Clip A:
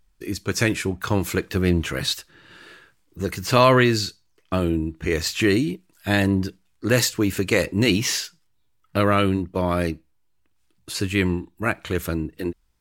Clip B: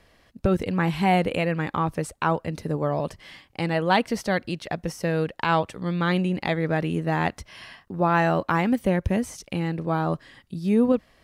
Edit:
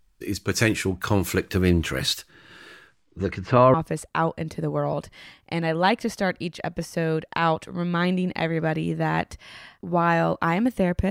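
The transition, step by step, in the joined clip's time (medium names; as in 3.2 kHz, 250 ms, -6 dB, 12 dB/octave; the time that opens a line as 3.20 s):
clip A
2.87–3.74 s: low-pass 10 kHz -> 1 kHz
3.74 s: go over to clip B from 1.81 s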